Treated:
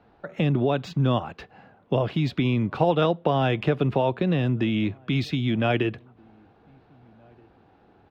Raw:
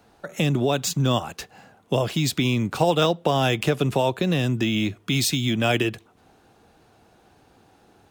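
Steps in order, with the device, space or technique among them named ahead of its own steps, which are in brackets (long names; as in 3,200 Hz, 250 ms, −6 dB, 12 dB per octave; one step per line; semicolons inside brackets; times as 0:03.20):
shout across a valley (high-frequency loss of the air 350 metres; slap from a distant wall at 270 metres, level −30 dB)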